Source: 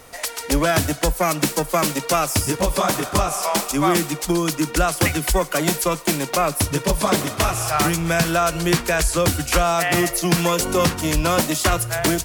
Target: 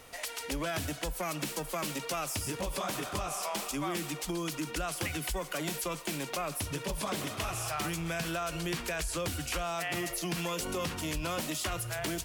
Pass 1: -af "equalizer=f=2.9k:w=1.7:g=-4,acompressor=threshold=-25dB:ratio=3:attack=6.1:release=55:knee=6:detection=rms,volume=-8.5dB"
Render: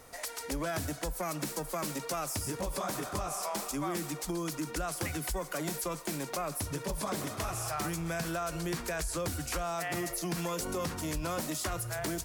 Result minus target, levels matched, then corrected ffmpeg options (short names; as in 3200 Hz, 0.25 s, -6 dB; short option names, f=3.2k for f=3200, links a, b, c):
4000 Hz band -3.5 dB
-af "equalizer=f=2.9k:w=1.7:g=5,acompressor=threshold=-25dB:ratio=3:attack=6.1:release=55:knee=6:detection=rms,volume=-8.5dB"